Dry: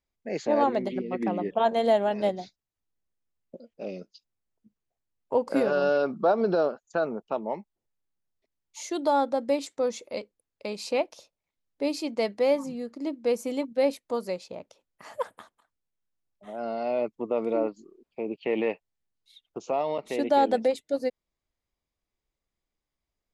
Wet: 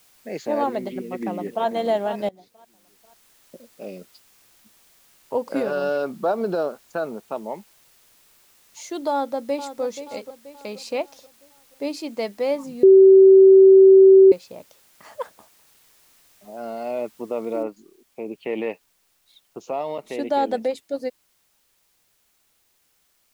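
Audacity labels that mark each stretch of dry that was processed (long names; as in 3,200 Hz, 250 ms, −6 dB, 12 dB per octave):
0.890000	1.660000	delay throw 490 ms, feedback 30%, level −11 dB
2.290000	3.690000	fade in equal-power, from −20.5 dB
9.100000	9.820000	delay throw 480 ms, feedback 45%, level −11 dB
12.830000	14.320000	beep over 384 Hz −6.5 dBFS
15.340000	16.570000	flat-topped bell 2,500 Hz −14 dB 2.3 octaves
17.630000	17.630000	noise floor change −57 dB −66 dB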